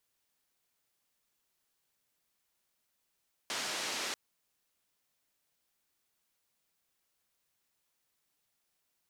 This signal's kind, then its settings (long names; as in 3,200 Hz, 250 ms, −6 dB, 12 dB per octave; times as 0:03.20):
band-limited noise 240–5,600 Hz, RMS −37 dBFS 0.64 s